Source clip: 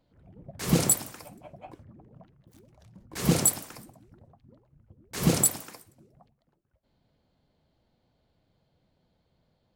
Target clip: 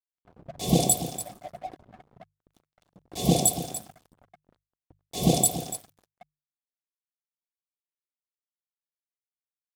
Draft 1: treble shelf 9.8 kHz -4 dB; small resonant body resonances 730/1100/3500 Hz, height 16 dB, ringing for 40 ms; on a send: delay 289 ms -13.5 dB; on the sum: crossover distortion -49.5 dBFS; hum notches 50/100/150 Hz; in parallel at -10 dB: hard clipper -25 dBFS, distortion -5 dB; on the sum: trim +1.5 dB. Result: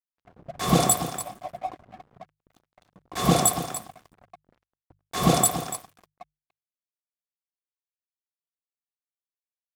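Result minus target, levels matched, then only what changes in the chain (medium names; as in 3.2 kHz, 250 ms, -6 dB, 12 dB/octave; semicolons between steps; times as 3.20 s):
1 kHz band +6.0 dB; hard clipper: distortion -5 dB
add first: Butterworth band-stop 1.4 kHz, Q 0.64; change: hard clipper -35 dBFS, distortion 0 dB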